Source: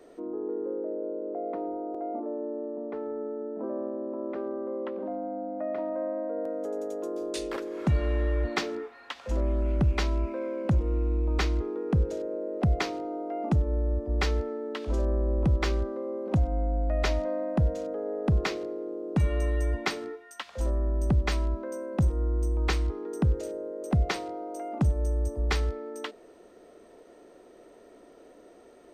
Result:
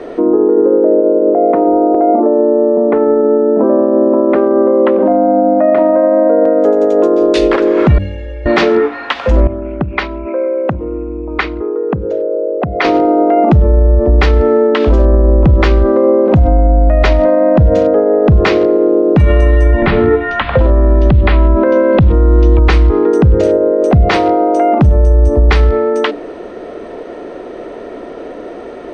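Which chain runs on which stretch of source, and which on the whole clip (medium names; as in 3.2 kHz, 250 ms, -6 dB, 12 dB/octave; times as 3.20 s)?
1.24–3.95 s: distance through air 160 m + decimation joined by straight lines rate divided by 2×
7.98–8.46 s: treble shelf 3.4 kHz +7.5 dB + static phaser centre 470 Hz, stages 4 + inharmonic resonator 250 Hz, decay 0.3 s, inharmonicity 0.03
9.47–12.85 s: resonances exaggerated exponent 1.5 + band-pass filter 2.3 kHz, Q 0.54
19.82–22.59 s: inverse Chebyshev low-pass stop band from 7.4 kHz + three bands compressed up and down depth 100%
whole clip: low-pass 3.1 kHz 12 dB/octave; de-hum 97.42 Hz, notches 3; loudness maximiser +27 dB; trim -1 dB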